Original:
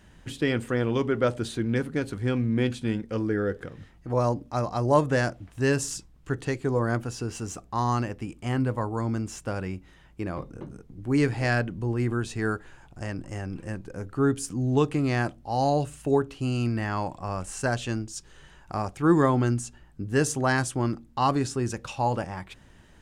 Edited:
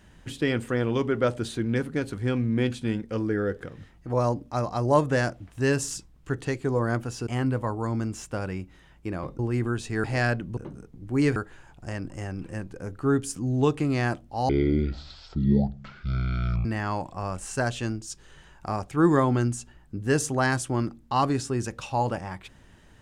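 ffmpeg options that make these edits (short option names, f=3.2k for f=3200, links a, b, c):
-filter_complex "[0:a]asplit=8[a][b][c][d][e][f][g][h];[a]atrim=end=7.272[i];[b]atrim=start=8.408:end=10.532[j];[c]atrim=start=11.848:end=12.502[k];[d]atrim=start=11.318:end=11.852[l];[e]atrim=start=10.528:end=11.322[m];[f]atrim=start=12.498:end=15.634[n];[g]atrim=start=15.63:end=16.71,asetpts=PTS-STARTPTS,asetrate=22050,aresample=44100[o];[h]atrim=start=16.706[p];[i][j]acrossfade=d=0.004:c1=hsin:c2=hsin[q];[q][k]acrossfade=d=0.004:c1=hsin:c2=hsin[r];[r][l]acrossfade=d=0.004:c1=hsin:c2=hsin[s];[s][m]acrossfade=d=0.004:c1=hsin:c2=hsin[t];[t][n]acrossfade=d=0.004:c1=hsin:c2=hsin[u];[u][o]acrossfade=d=0.004:c1=hsin:c2=hsin[v];[v][p]acrossfade=d=0.004:c1=hsin:c2=hsin"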